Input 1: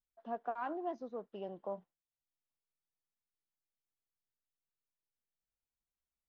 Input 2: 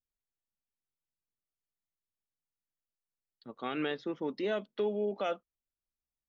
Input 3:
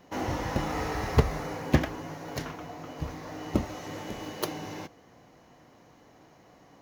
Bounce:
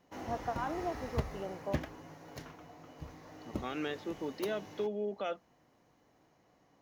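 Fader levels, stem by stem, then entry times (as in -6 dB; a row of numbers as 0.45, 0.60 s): +2.0, -3.5, -12.0 dB; 0.00, 0.00, 0.00 s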